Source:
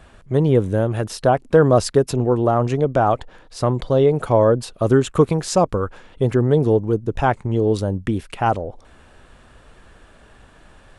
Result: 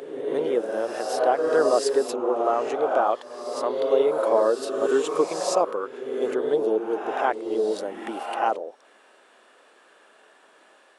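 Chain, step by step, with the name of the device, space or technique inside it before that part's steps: ghost voice (reverse; reverberation RT60 1.5 s, pre-delay 15 ms, DRR 1.5 dB; reverse; high-pass 340 Hz 24 dB/octave); trim -5.5 dB

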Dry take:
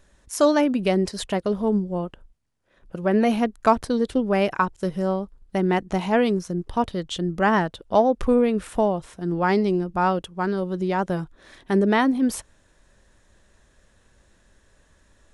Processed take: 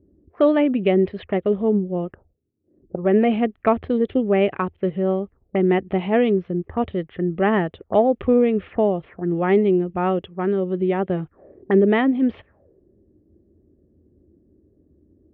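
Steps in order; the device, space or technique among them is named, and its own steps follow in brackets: envelope filter bass rig (touch-sensitive low-pass 290–3300 Hz up, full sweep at -24 dBFS; cabinet simulation 75–2100 Hz, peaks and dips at 82 Hz +8 dB, 390 Hz +5 dB, 970 Hz -10 dB, 1.5 kHz -9 dB); trim +1.5 dB

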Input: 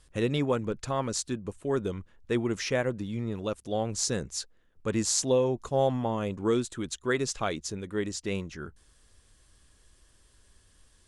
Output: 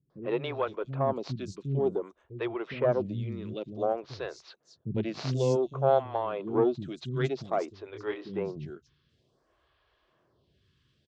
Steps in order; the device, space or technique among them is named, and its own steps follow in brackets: vibe pedal into a guitar amplifier (lamp-driven phase shifter 0.54 Hz; valve stage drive 16 dB, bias 0.7; cabinet simulation 100–4200 Hz, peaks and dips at 140 Hz +10 dB, 370 Hz +6 dB, 660 Hz +7 dB, 1.1 kHz +3 dB, 1.8 kHz -4 dB); 7.80–8.29 s: doubling 26 ms -4 dB; three bands offset in time lows, mids, highs 100/330 ms, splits 260/5400 Hz; trim +4 dB

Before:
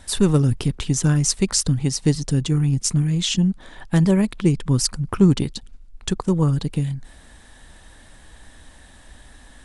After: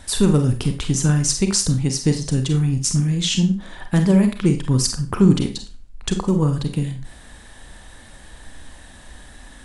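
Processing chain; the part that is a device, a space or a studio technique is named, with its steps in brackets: parallel compression (in parallel at -4 dB: compression, threshold -30 dBFS, peak gain reduction 18.5 dB); 6.16–6.60 s: on the sum: de-esser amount 70%; Schroeder reverb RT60 0.32 s, combs from 31 ms, DRR 5.5 dB; trim -1 dB

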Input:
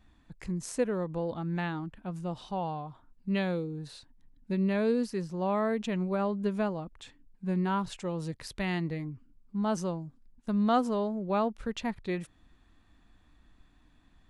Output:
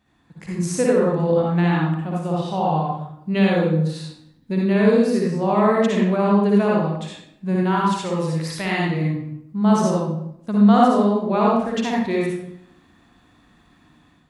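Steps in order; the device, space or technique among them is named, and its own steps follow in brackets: 7.56–8.97 s: bass shelf 400 Hz -5 dB; far laptop microphone (reverberation RT60 0.75 s, pre-delay 51 ms, DRR -4 dB; high-pass 110 Hz 12 dB/octave; level rider gain up to 7 dB)

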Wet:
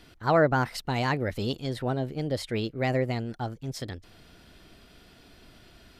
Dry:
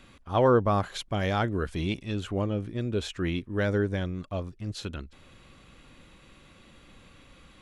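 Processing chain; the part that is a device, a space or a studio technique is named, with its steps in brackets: nightcore (tape speed +27%)

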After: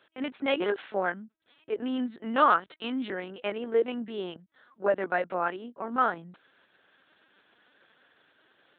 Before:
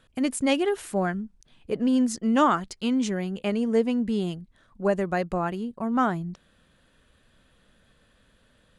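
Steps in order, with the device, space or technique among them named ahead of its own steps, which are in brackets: talking toy (LPC vocoder at 8 kHz pitch kept; high-pass 370 Hz 12 dB/octave; peaking EQ 1.5 kHz +5 dB 0.52 oct)

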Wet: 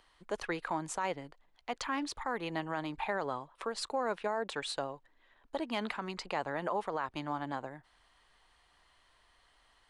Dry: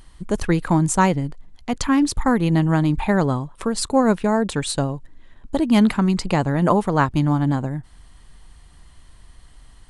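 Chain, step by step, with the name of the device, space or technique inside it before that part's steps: DJ mixer with the lows and highs turned down (three-band isolator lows -21 dB, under 430 Hz, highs -13 dB, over 4.9 kHz; peak limiter -15.5 dBFS, peak gain reduction 11 dB); trim -7.5 dB

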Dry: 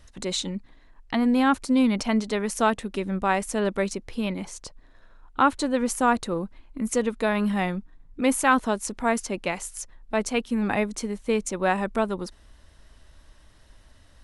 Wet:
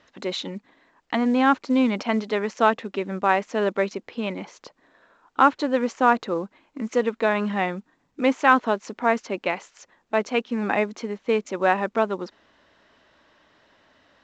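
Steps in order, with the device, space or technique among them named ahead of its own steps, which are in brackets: telephone (band-pass 270–3200 Hz; trim +3.5 dB; µ-law 128 kbps 16 kHz)

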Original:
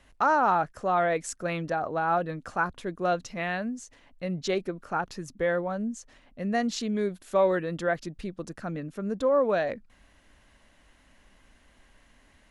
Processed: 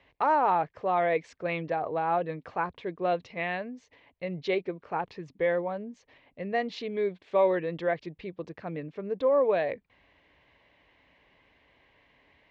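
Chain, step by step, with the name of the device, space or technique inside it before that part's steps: guitar cabinet (cabinet simulation 91–3900 Hz, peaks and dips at 220 Hz -10 dB, 450 Hz +5 dB, 950 Hz +3 dB, 1.4 kHz -9 dB, 2.2 kHz +6 dB); trim -1.5 dB

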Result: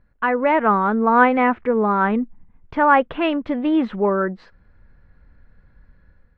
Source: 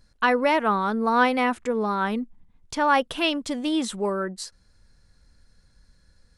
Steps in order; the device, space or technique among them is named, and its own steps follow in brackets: action camera in a waterproof case (low-pass 2.2 kHz 24 dB/octave; level rider gain up to 7 dB; AAC 48 kbps 32 kHz)

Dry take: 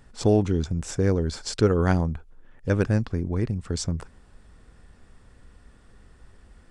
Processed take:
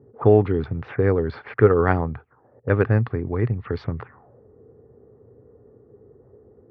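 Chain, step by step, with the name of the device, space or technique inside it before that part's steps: envelope filter bass rig (touch-sensitive low-pass 350–4400 Hz up, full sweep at -25 dBFS; cabinet simulation 86–2300 Hz, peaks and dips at 120 Hz +8 dB, 180 Hz -6 dB, 430 Hz +6 dB, 800 Hz +5 dB, 1.2 kHz +7 dB, 1.9 kHz +5 dB); trim +1 dB

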